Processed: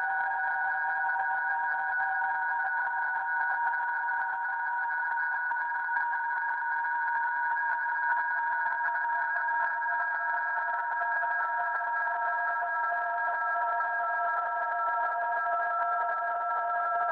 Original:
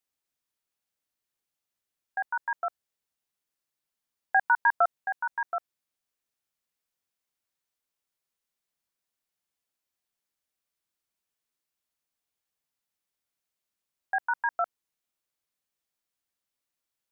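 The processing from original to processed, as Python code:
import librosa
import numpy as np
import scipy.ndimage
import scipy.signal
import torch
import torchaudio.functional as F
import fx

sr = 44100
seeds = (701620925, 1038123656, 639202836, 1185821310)

y = fx.cheby_harmonics(x, sr, harmonics=(2,), levels_db=(-40,), full_scale_db=-13.0)
y = fx.paulstretch(y, sr, seeds[0], factor=46.0, window_s=0.5, from_s=2.27)
y = fx.transient(y, sr, attack_db=-7, sustain_db=10)
y = F.gain(torch.from_numpy(y), 2.5).numpy()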